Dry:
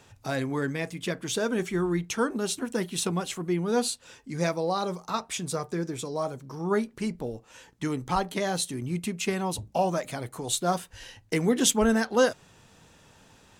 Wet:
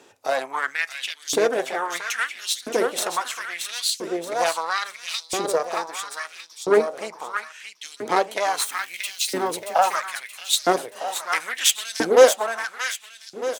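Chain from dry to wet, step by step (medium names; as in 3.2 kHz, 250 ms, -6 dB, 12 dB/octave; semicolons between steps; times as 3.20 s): 8.60–9.33 s: zero-crossing glitches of -32 dBFS; Chebyshev shaper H 8 -17 dB, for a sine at -7 dBFS; on a send: feedback delay 627 ms, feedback 42%, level -6 dB; on the sum: LFO high-pass saw up 0.75 Hz 310–4800 Hz; trim +2.5 dB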